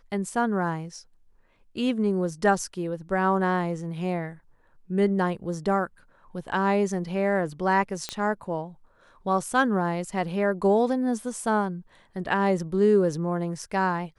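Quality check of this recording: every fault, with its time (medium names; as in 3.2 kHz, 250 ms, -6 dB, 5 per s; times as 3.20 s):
8.09 s: pop -13 dBFS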